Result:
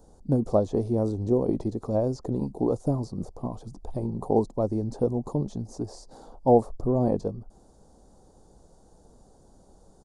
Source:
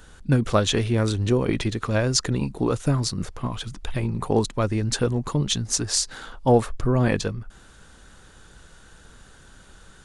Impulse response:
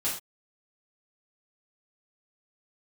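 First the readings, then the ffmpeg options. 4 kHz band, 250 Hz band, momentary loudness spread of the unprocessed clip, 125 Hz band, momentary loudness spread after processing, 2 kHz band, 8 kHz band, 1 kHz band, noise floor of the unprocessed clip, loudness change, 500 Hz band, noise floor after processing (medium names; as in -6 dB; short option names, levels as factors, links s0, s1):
under -25 dB, -2.0 dB, 10 LU, -6.5 dB, 13 LU, under -25 dB, under -20 dB, -2.5 dB, -50 dBFS, -3.5 dB, -0.5 dB, -57 dBFS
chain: -filter_complex "[0:a]acrossover=split=2600[s0][s1];[s1]acompressor=threshold=0.0112:ratio=4:attack=1:release=60[s2];[s0][s2]amix=inputs=2:normalize=0,firequalizer=gain_entry='entry(120,0);entry(220,5);entry(760,8);entry(1500,-21);entry(2800,-24);entry(4700,-4)':delay=0.05:min_phase=1,volume=0.447"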